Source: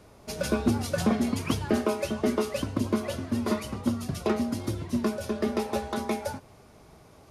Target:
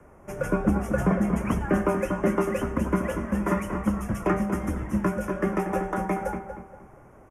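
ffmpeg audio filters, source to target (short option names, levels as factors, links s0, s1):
-filter_complex "[0:a]highshelf=f=2300:t=q:w=1.5:g=-8.5,acrossover=split=390|1300[s0][s1][s2];[s2]dynaudnorm=f=280:g=13:m=2[s3];[s0][s1][s3]amix=inputs=3:normalize=0,afreqshift=-33,asuperstop=centerf=4200:order=4:qfactor=1.4,asplit=2[s4][s5];[s5]adelay=236,lowpass=f=2100:p=1,volume=0.422,asplit=2[s6][s7];[s7]adelay=236,lowpass=f=2100:p=1,volume=0.34,asplit=2[s8][s9];[s9]adelay=236,lowpass=f=2100:p=1,volume=0.34,asplit=2[s10][s11];[s11]adelay=236,lowpass=f=2100:p=1,volume=0.34[s12];[s4][s6][s8][s10][s12]amix=inputs=5:normalize=0,volume=1.19"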